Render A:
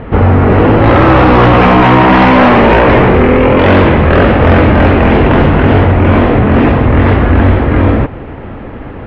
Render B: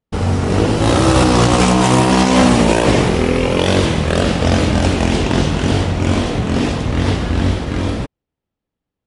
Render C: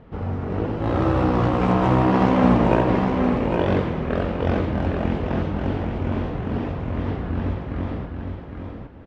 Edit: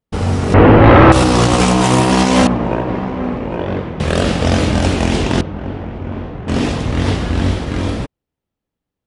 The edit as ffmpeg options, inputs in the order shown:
-filter_complex "[2:a]asplit=2[s0][s1];[1:a]asplit=4[s2][s3][s4][s5];[s2]atrim=end=0.542[s6];[0:a]atrim=start=0.538:end=1.122[s7];[s3]atrim=start=1.118:end=2.472[s8];[s0]atrim=start=2.468:end=4.002[s9];[s4]atrim=start=3.998:end=5.412[s10];[s1]atrim=start=5.408:end=6.482[s11];[s5]atrim=start=6.478[s12];[s6][s7]acrossfade=d=0.004:c1=hsin:c2=hsin[s13];[s13][s8]acrossfade=d=0.004:c1=hsin:c2=hsin[s14];[s14][s9]acrossfade=d=0.004:c1=hsin:c2=hsin[s15];[s15][s10]acrossfade=d=0.004:c1=hsin:c2=hsin[s16];[s16][s11]acrossfade=d=0.004:c1=hsin:c2=hsin[s17];[s17][s12]acrossfade=d=0.004:c1=hsin:c2=hsin"

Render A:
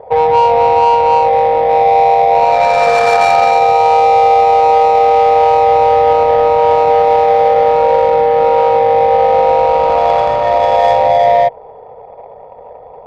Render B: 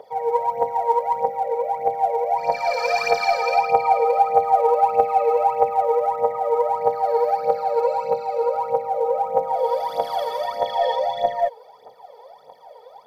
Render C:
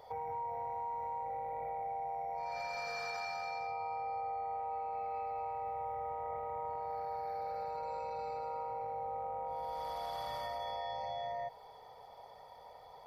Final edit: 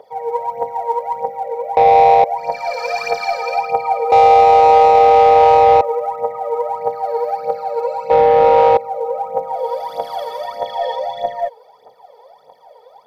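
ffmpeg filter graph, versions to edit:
-filter_complex "[0:a]asplit=3[s0][s1][s2];[1:a]asplit=4[s3][s4][s5][s6];[s3]atrim=end=1.772[s7];[s0]atrim=start=1.768:end=2.242[s8];[s4]atrim=start=2.238:end=4.122[s9];[s1]atrim=start=4.118:end=5.812[s10];[s5]atrim=start=5.808:end=8.102[s11];[s2]atrim=start=8.098:end=8.772[s12];[s6]atrim=start=8.768[s13];[s7][s8]acrossfade=d=0.004:c1=hsin:c2=hsin[s14];[s14][s9]acrossfade=d=0.004:c1=hsin:c2=hsin[s15];[s15][s10]acrossfade=d=0.004:c1=hsin:c2=hsin[s16];[s16][s11]acrossfade=d=0.004:c1=hsin:c2=hsin[s17];[s17][s12]acrossfade=d=0.004:c1=hsin:c2=hsin[s18];[s18][s13]acrossfade=d=0.004:c1=hsin:c2=hsin"

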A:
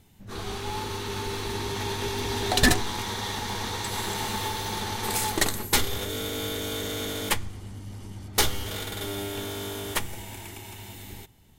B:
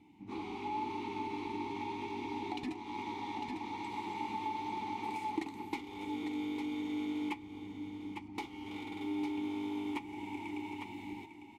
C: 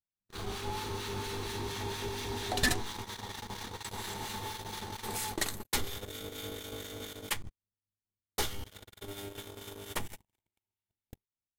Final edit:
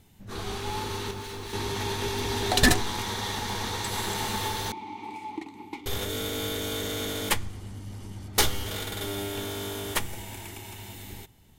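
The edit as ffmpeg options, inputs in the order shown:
-filter_complex "[0:a]asplit=3[s0][s1][s2];[s0]atrim=end=1.112[s3];[2:a]atrim=start=1.108:end=1.532[s4];[s1]atrim=start=1.528:end=4.722[s5];[1:a]atrim=start=4.718:end=5.862[s6];[s2]atrim=start=5.858[s7];[s3][s4]acrossfade=d=0.004:c1=hsin:c2=hsin[s8];[s8][s5]acrossfade=d=0.004:c1=hsin:c2=hsin[s9];[s9][s6]acrossfade=d=0.004:c1=hsin:c2=hsin[s10];[s10][s7]acrossfade=d=0.004:c1=hsin:c2=hsin"

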